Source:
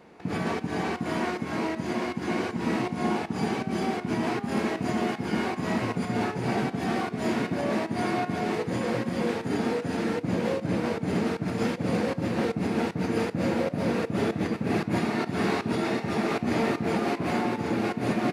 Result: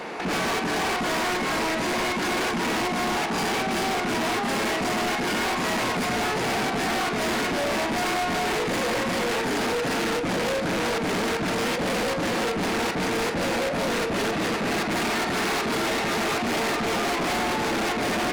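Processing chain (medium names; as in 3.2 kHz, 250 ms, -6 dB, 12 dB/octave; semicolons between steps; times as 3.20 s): overdrive pedal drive 27 dB, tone 8 kHz, clips at -16.5 dBFS; saturation -26 dBFS, distortion -13 dB; trim +2.5 dB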